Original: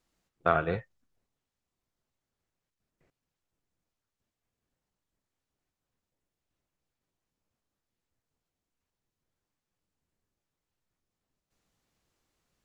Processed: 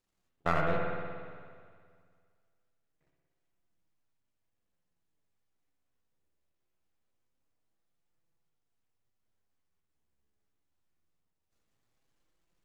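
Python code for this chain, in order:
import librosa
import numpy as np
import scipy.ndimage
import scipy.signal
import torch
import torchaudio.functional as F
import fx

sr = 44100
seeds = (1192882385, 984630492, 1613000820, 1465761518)

y = np.where(x < 0.0, 10.0 ** (-12.0 / 20.0) * x, x)
y = fx.rev_spring(y, sr, rt60_s=2.0, pass_ms=(58,), chirp_ms=70, drr_db=0.5)
y = fx.chorus_voices(y, sr, voices=2, hz=0.24, base_ms=10, depth_ms=4.3, mix_pct=30)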